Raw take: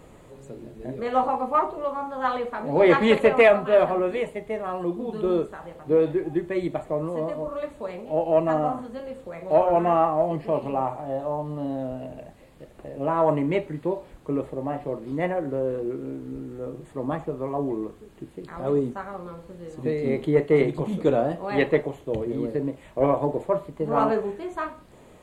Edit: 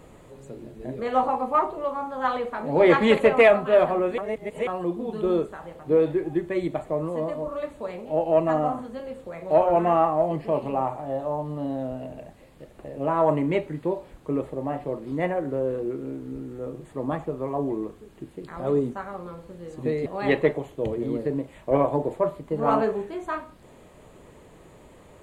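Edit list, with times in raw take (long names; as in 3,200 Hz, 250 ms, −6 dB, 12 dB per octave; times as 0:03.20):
0:04.18–0:04.67: reverse
0:20.06–0:21.35: remove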